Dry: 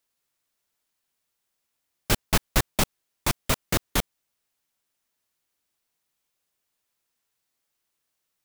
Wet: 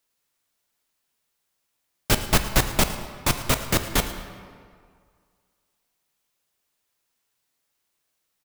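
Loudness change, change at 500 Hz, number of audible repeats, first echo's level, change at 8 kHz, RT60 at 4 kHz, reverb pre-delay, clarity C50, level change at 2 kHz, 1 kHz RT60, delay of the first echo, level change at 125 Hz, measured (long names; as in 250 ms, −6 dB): +3.0 dB, +3.5 dB, 1, −17.5 dB, +3.0 dB, 1.3 s, 7 ms, 9.0 dB, +3.0 dB, 2.0 s, 110 ms, +3.0 dB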